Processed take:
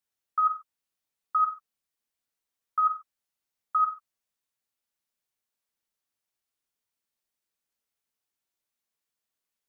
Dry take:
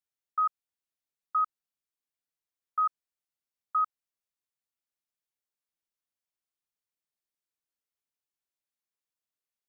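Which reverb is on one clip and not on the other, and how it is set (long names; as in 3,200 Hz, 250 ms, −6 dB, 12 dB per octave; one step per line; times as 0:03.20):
reverb whose tail is shaped and stops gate 160 ms falling, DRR 5.5 dB
level +4 dB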